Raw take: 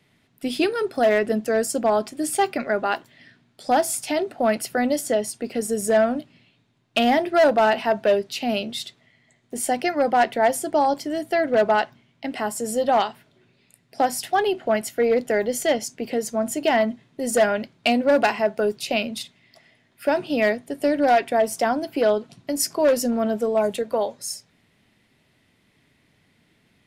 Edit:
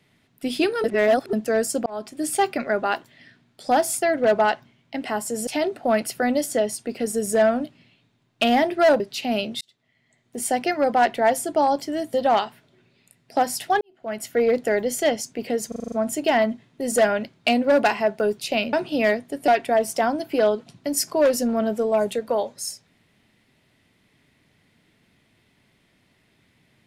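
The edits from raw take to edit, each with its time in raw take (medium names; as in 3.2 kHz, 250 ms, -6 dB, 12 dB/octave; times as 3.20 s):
0.84–1.33 s: reverse
1.86–2.37 s: fade in equal-power
7.55–8.18 s: delete
8.79–9.62 s: fade in
11.32–12.77 s: move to 4.02 s
14.44–14.92 s: fade in quadratic
16.31 s: stutter 0.04 s, 7 plays
19.12–20.11 s: delete
20.86–21.11 s: delete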